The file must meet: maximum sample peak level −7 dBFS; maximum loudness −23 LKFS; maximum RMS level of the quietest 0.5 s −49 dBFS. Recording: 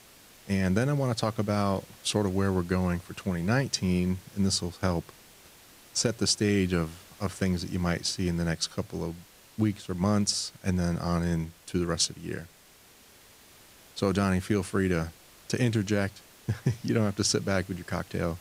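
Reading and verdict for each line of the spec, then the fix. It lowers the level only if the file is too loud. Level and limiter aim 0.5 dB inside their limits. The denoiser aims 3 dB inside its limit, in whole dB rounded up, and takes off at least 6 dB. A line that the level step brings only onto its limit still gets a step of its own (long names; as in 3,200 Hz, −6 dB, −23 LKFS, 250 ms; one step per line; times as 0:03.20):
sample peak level −11.0 dBFS: in spec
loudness −29.0 LKFS: in spec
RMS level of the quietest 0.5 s −56 dBFS: in spec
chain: no processing needed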